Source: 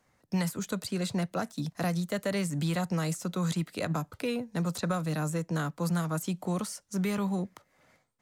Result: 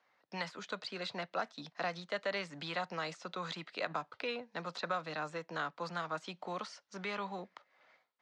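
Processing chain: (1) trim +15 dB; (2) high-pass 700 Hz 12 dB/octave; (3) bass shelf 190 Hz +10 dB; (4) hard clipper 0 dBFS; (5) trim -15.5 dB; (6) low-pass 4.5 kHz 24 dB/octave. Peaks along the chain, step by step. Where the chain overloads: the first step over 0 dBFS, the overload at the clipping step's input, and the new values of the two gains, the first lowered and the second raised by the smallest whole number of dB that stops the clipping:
-2.0 dBFS, -5.0 dBFS, -4.5 dBFS, -4.5 dBFS, -20.0 dBFS, -20.0 dBFS; nothing clips

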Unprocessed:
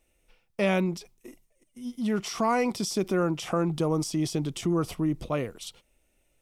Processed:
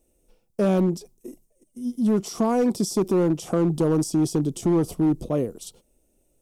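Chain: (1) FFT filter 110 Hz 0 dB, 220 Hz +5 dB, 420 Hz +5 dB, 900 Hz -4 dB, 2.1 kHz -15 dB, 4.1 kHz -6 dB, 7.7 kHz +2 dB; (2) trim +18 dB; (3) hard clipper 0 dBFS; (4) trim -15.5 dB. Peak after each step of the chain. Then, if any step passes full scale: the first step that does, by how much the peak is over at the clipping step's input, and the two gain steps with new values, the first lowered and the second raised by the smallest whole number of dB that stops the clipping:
-12.5 dBFS, +5.5 dBFS, 0.0 dBFS, -15.5 dBFS; step 2, 5.5 dB; step 2 +12 dB, step 4 -9.5 dB

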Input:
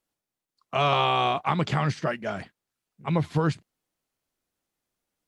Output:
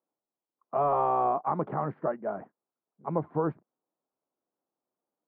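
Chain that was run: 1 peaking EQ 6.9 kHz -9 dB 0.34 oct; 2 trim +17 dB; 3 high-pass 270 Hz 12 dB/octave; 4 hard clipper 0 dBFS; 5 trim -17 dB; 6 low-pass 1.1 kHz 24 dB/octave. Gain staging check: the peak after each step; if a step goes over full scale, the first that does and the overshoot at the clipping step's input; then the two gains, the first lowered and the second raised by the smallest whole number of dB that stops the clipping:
-8.5 dBFS, +8.5 dBFS, +7.0 dBFS, 0.0 dBFS, -17.0 dBFS, -16.0 dBFS; step 2, 7.0 dB; step 2 +10 dB, step 5 -10 dB

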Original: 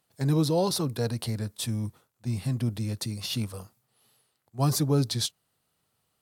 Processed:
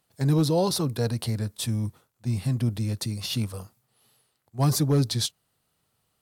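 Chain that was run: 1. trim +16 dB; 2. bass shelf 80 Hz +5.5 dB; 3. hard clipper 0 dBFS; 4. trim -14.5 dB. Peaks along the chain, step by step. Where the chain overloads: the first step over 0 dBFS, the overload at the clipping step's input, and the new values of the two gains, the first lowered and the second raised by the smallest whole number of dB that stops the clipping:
+3.5 dBFS, +4.0 dBFS, 0.0 dBFS, -14.5 dBFS; step 1, 4.0 dB; step 1 +12 dB, step 4 -10.5 dB

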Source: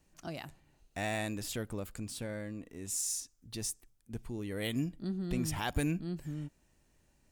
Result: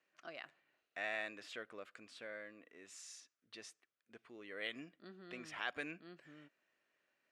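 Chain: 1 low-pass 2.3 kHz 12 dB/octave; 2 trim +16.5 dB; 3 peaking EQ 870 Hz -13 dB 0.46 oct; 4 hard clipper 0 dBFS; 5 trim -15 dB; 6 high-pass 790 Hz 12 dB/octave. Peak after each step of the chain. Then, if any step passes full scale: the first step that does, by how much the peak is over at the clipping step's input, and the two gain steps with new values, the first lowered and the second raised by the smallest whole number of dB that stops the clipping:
-20.5 dBFS, -4.0 dBFS, -4.0 dBFS, -4.0 dBFS, -19.0 dBFS, -24.0 dBFS; nothing clips

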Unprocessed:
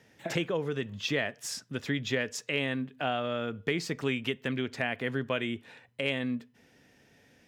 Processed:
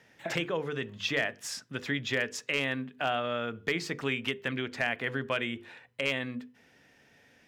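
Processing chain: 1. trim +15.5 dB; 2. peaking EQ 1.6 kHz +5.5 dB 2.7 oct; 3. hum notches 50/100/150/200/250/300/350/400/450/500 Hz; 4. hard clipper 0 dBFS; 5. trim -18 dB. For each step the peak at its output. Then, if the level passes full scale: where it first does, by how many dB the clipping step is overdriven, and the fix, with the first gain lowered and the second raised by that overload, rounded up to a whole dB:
+0.5 dBFS, +4.5 dBFS, +4.5 dBFS, 0.0 dBFS, -18.0 dBFS; step 1, 4.5 dB; step 1 +10.5 dB, step 5 -13 dB

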